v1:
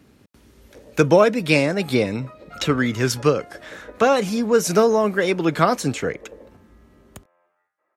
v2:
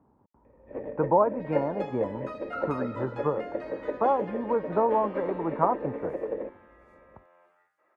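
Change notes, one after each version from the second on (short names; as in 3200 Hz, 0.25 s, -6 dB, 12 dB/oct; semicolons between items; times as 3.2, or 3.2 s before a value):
speech: add ladder low-pass 1000 Hz, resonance 75%; first sound +10.5 dB; second sound +4.5 dB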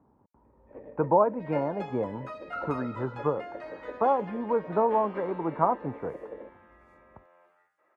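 first sound -9.5 dB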